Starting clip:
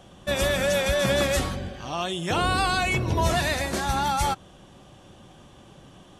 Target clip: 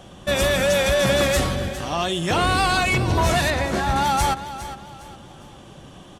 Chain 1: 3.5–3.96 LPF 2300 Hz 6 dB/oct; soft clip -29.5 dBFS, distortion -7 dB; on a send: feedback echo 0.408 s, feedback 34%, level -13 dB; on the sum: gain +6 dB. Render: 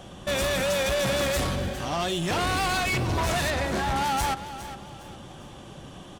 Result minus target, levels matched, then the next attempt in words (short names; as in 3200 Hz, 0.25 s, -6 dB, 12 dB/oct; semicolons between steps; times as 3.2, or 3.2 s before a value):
soft clip: distortion +9 dB
3.5–3.96 LPF 2300 Hz 6 dB/oct; soft clip -19 dBFS, distortion -16 dB; on a send: feedback echo 0.408 s, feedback 34%, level -13 dB; on the sum: gain +6 dB